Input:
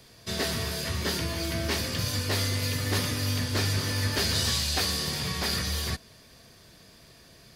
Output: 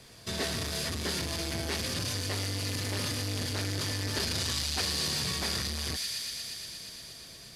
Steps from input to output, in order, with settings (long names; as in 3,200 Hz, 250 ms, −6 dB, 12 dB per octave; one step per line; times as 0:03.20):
variable-slope delta modulation 64 kbit/s
delay with a high-pass on its return 118 ms, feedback 84%, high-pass 2,900 Hz, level −5.5 dB
in parallel at +1 dB: brickwall limiter −24.5 dBFS, peak gain reduction 10.5 dB
on the sum: saturating transformer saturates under 560 Hz
level −6 dB